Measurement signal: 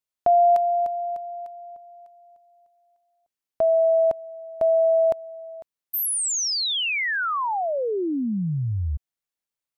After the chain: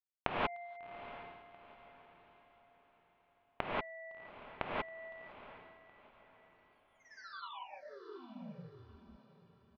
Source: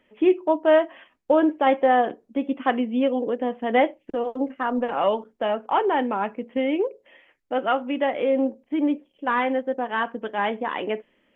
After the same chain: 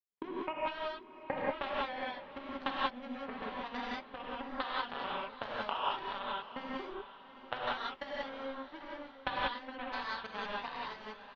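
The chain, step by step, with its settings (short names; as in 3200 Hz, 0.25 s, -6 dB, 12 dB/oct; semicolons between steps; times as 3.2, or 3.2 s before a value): resonant low shelf 750 Hz -9 dB, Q 1.5; comb 5.2 ms, depth 56%; de-hum 233.4 Hz, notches 4; in parallel at -2 dB: limiter -20.5 dBFS; on the sum: compressor 6:1, threshold -31 dBFS; polynomial smoothing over 41 samples; power-law curve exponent 3; on a send: diffused feedback echo 0.738 s, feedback 41%, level -13.5 dB; on the sum: non-linear reverb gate 0.21 s rising, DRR -5.5 dB; gain +5 dB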